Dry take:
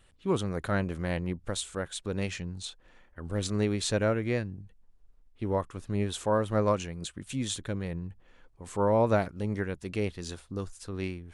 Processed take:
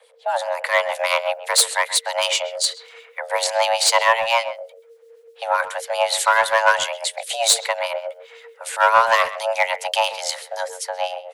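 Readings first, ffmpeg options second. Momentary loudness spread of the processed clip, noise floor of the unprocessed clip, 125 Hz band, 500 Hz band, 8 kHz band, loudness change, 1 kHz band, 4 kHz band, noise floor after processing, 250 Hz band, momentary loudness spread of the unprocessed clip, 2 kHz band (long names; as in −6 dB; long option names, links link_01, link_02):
13 LU, −61 dBFS, below −30 dB, +8.0 dB, +17.5 dB, +11.5 dB, +17.0 dB, +18.5 dB, −50 dBFS, below −25 dB, 12 LU, +18.5 dB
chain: -filter_complex "[0:a]acrossover=split=210|1000[link_01][link_02][link_03];[link_03]dynaudnorm=framelen=110:gausssize=13:maxgain=11.5dB[link_04];[link_01][link_02][link_04]amix=inputs=3:normalize=0,acrossover=split=2300[link_05][link_06];[link_05]aeval=exprs='val(0)*(1-0.7/2+0.7/2*cos(2*PI*7.8*n/s))':channel_layout=same[link_07];[link_06]aeval=exprs='val(0)*(1-0.7/2-0.7/2*cos(2*PI*7.8*n/s))':channel_layout=same[link_08];[link_07][link_08]amix=inputs=2:normalize=0,aeval=exprs='clip(val(0),-1,0.0794)':channel_layout=same,acontrast=47,afreqshift=450,asplit=2[link_09][link_10];[link_10]adelay=130,highpass=300,lowpass=3400,asoftclip=type=hard:threshold=-15dB,volume=-14dB[link_11];[link_09][link_11]amix=inputs=2:normalize=0,volume=5dB"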